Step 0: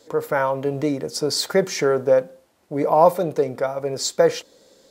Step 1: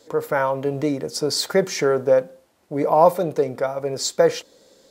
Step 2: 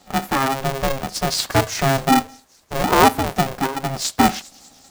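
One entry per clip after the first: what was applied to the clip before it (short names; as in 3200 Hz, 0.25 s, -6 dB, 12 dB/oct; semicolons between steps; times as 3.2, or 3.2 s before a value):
nothing audible
thin delay 0.199 s, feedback 63%, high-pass 5300 Hz, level -13 dB; polarity switched at an audio rate 270 Hz; gain +1 dB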